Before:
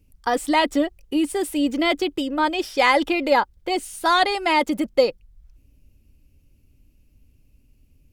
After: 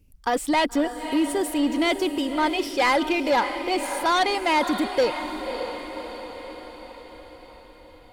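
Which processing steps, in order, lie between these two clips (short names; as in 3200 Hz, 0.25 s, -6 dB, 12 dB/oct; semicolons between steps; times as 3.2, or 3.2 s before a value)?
diffused feedback echo 0.576 s, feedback 57%, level -11 dB; soft clip -14.5 dBFS, distortion -14 dB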